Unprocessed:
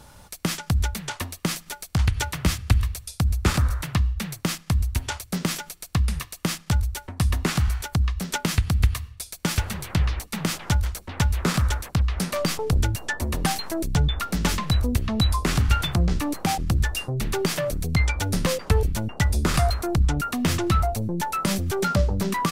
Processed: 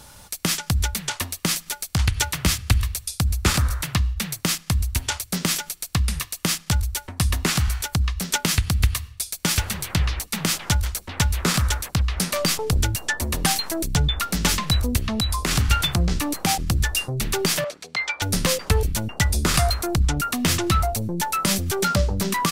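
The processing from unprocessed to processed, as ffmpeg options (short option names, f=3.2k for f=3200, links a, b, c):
-filter_complex "[0:a]asettb=1/sr,asplit=3[a][b][c];[a]atrim=end=15.114[d];[b]atrim=start=15.11:end=15.51,asetpts=PTS-STARTPTS,afade=t=in:d=0.004:c=qsin,afade=t=out:st=0.396:d=0.004:c=qsin,acompressor=threshold=-20dB:ratio=6:attack=3.2:release=140:knee=1:detection=peak[e];[c]atrim=start=15.506[f];[d][e]acrossfade=d=0.004:c1=hsin:c2=qsin[g];[g][f]acrossfade=d=0.004:c1=qsin:c2=hsin,asettb=1/sr,asplit=3[h][i][j];[h]atrim=end=17.644[k];[i]atrim=start=17.64:end=18.22,asetpts=PTS-STARTPTS,afade=t=in:d=0.004:c=qsin,afade=t=out:st=0.576:d=0.004:c=qsin,highpass=620,lowpass=4.4k[l];[j]atrim=start=18.216[m];[k][l]acrossfade=d=0.004:c1=hsin:c2=qsin[n];[n][m]acrossfade=d=0.004:c1=qsin:c2=hsin,highshelf=f=2.1k:g=8"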